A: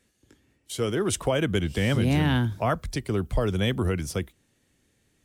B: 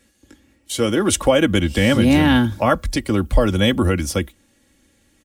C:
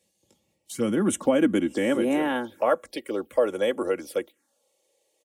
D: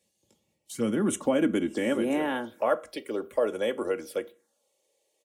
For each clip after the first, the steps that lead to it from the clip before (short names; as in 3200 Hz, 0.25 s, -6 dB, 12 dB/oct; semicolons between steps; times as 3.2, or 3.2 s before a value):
comb 3.6 ms, depth 61%; gain +8 dB
high-pass sweep 170 Hz -> 460 Hz, 0.89–2.32; envelope phaser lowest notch 250 Hz, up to 4600 Hz, full sweep at -13 dBFS; gain -8.5 dB
reverb RT60 0.35 s, pre-delay 4 ms, DRR 11.5 dB; gain -3 dB